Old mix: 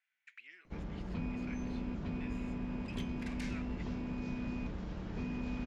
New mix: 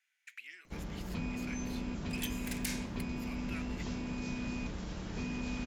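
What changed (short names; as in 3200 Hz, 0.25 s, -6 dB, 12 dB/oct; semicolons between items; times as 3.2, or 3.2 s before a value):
second sound: entry -0.75 s; master: remove tape spacing loss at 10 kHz 23 dB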